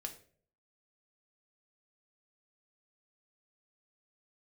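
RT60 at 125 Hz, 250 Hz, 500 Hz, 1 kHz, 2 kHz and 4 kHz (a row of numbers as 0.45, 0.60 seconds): 0.70, 0.60, 0.60, 0.40, 0.40, 0.35 seconds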